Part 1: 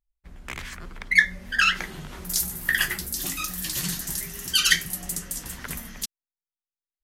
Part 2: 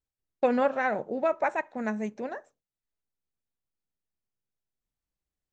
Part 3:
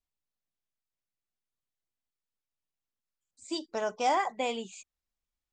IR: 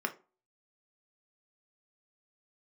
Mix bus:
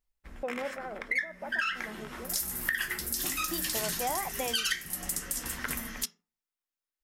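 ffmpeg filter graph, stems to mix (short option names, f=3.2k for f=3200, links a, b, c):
-filter_complex "[0:a]acontrast=40,volume=-7.5dB,asplit=2[a][b];[b]volume=-7dB[c];[1:a]highpass=300,tiltshelf=f=1.1k:g=8,volume=-15dB,asplit=2[d][e];[2:a]volume=-1dB[f];[e]apad=whole_len=310051[g];[a][g]sidechaincompress=threshold=-47dB:ratio=8:attack=16:release=489[h];[3:a]atrim=start_sample=2205[i];[c][i]afir=irnorm=-1:irlink=0[j];[h][d][f][j]amix=inputs=4:normalize=0,acompressor=threshold=-28dB:ratio=6"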